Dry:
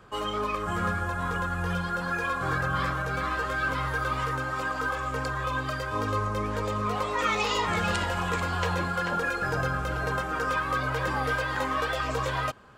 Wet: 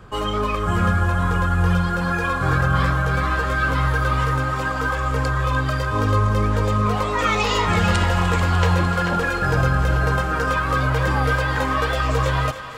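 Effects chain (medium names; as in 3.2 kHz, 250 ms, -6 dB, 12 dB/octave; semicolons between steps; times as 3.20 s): bass shelf 160 Hz +11 dB; on a send: thinning echo 298 ms, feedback 75%, level -12 dB; on the sum: trim +5.5 dB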